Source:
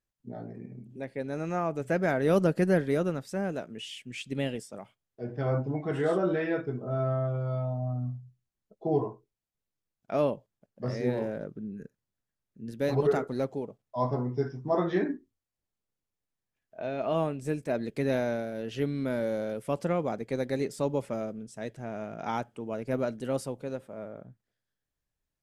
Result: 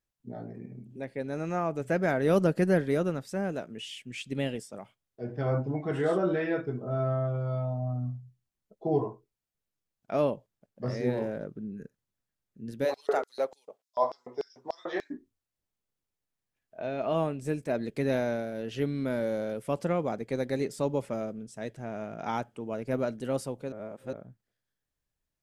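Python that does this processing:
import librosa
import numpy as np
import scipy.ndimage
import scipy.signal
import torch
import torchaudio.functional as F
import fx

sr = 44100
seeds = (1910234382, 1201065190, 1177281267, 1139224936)

y = fx.filter_lfo_highpass(x, sr, shape='square', hz=3.4, low_hz=590.0, high_hz=4700.0, q=1.6, at=(12.84, 15.1), fade=0.02)
y = fx.edit(y, sr, fx.reverse_span(start_s=23.72, length_s=0.41), tone=tone)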